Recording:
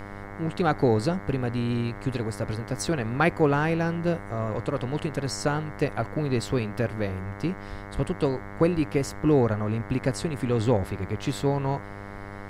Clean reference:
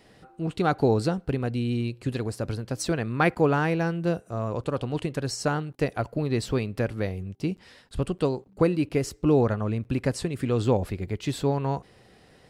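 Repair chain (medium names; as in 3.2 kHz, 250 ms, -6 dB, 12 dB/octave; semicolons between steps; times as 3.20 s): de-hum 100.4 Hz, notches 22; de-plosive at 7.69/8.75 s; noise print and reduce 16 dB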